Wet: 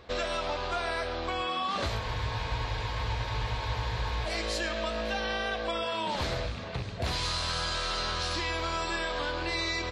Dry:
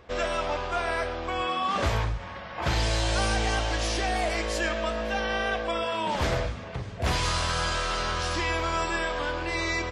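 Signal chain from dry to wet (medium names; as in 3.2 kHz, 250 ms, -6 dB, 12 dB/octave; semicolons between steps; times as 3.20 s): rattle on loud lows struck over -32 dBFS, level -32 dBFS; peaking EQ 4.1 kHz +9.5 dB 0.44 oct; compression, threshold -28 dBFS, peak gain reduction 8 dB; spectral freeze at 2.02 s, 2.24 s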